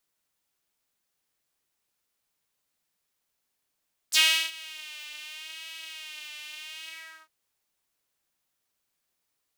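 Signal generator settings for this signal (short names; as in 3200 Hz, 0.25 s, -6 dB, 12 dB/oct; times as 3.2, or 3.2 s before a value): synth patch with vibrato D#4, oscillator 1 saw, sub -29.5 dB, noise -27 dB, filter highpass, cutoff 1200 Hz, Q 3.2, filter envelope 3 oct, filter decay 0.05 s, attack 30 ms, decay 0.36 s, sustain -23.5 dB, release 0.42 s, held 2.74 s, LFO 0.78 Hz, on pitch 61 cents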